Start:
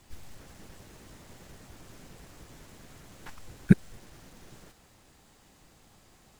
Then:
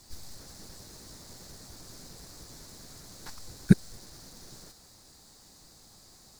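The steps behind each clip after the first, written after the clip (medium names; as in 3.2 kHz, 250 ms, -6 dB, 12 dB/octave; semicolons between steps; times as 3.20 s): resonant high shelf 3.6 kHz +6.5 dB, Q 3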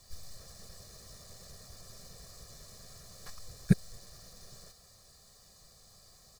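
comb 1.7 ms, depth 75%; trim -5.5 dB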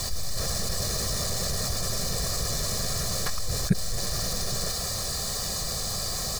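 level flattener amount 70%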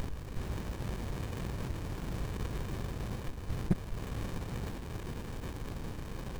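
sliding maximum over 65 samples; trim -5 dB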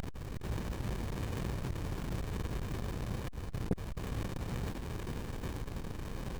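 transformer saturation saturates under 300 Hz; trim +2 dB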